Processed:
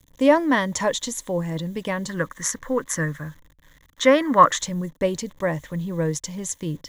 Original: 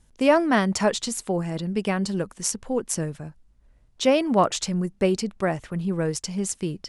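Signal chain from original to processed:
0:02.09–0:04.61: flat-topped bell 1,500 Hz +13.5 dB 1.1 octaves
bit reduction 9 bits
EQ curve with evenly spaced ripples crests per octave 1.1, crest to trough 10 dB
level −1 dB

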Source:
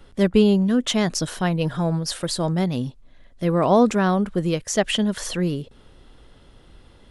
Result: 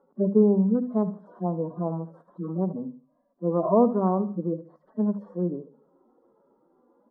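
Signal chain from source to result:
harmonic-percussive split with one part muted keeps harmonic
elliptic band-pass filter 190–1,100 Hz, stop band 40 dB
mains-hum notches 50/100/150/200/250 Hz
repeating echo 73 ms, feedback 34%, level −15 dB
level −2 dB

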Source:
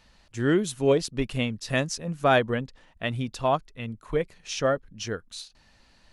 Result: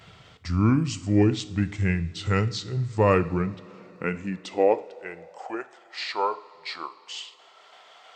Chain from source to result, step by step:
downward expander −53 dBFS
in parallel at +2.5 dB: upward compression, threshold −27 dBFS
on the sum: change of speed 0.751×
coupled-rooms reverb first 0.55 s, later 4.9 s, from −18 dB, DRR 11.5 dB
high-pass filter sweep 100 Hz → 740 Hz, 0:03.09–0:05.74
level −8.5 dB

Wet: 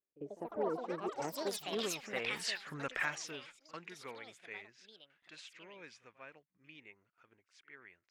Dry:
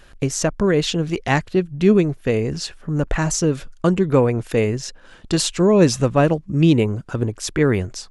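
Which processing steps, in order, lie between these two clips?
source passing by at 0:02.63, 21 m/s, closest 2.2 metres
noise gate with hold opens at −60 dBFS
band-pass filter sweep 390 Hz → 2,100 Hz, 0:01.14–0:02.35
delay with pitch and tempo change per echo 155 ms, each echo +6 semitones, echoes 3
echo ahead of the sound 48 ms −18 dB
level +9 dB

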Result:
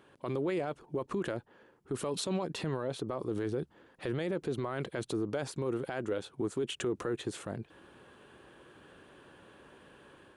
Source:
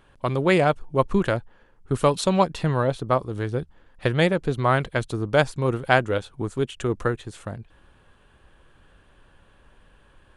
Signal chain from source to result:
high-pass filter 140 Hz 12 dB per octave
parametric band 360 Hz +7 dB 0.93 octaves
automatic gain control gain up to 5 dB
brickwall limiter −21.5 dBFS, peak gain reduction 20 dB
level −3.5 dB

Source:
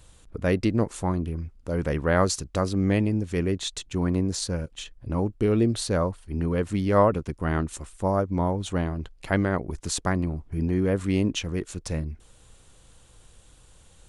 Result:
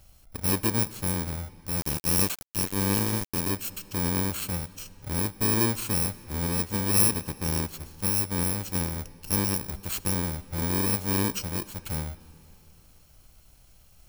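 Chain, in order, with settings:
samples in bit-reversed order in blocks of 64 samples
comb and all-pass reverb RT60 3.3 s, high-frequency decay 0.85×, pre-delay 5 ms, DRR 17 dB
0:01.79–0:03.50: centre clipping without the shift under −24.5 dBFS
level −2.5 dB

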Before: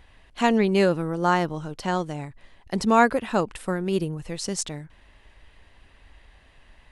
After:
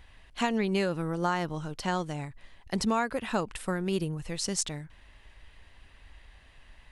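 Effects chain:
parametric band 400 Hz −4.5 dB 2.8 octaves
downward compressor 12 to 1, threshold −23 dBFS, peak gain reduction 10 dB

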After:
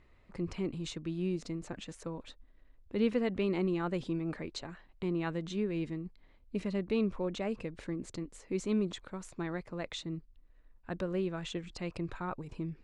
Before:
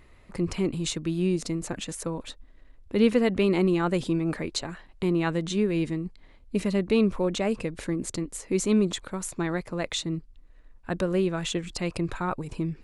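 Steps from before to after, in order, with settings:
high-frequency loss of the air 82 metres
level −8.5 dB

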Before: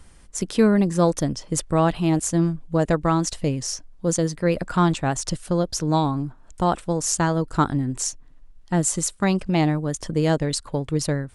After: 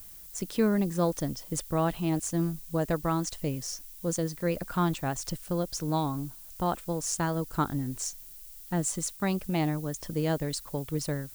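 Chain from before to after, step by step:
background noise violet −40 dBFS
level −8 dB

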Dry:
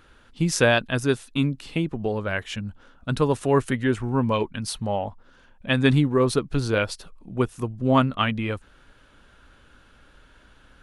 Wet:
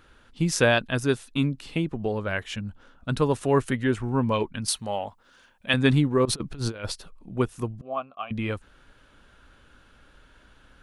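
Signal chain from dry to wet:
0:04.68–0:05.74: spectral tilt +2.5 dB per octave
0:06.25–0:06.92: compressor whose output falls as the input rises −28 dBFS, ratio −0.5
0:07.81–0:08.31: formant filter a
level −1.5 dB

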